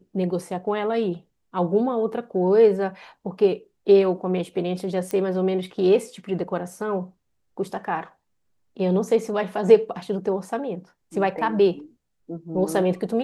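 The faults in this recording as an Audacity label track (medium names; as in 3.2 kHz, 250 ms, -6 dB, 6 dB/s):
5.110000	5.110000	pop -15 dBFS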